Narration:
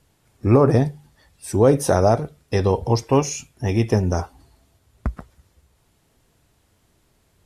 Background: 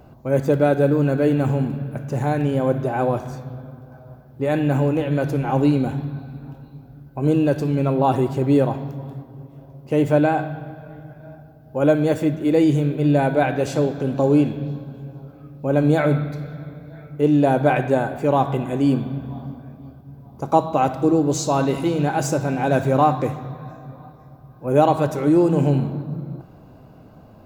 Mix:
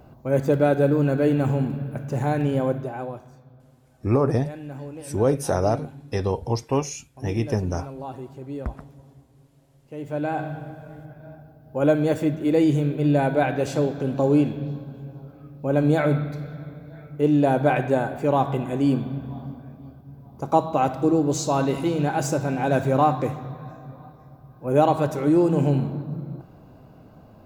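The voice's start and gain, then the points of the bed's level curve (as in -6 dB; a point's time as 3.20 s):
3.60 s, -5.5 dB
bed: 2.60 s -2 dB
3.30 s -17 dB
9.97 s -17 dB
10.47 s -2.5 dB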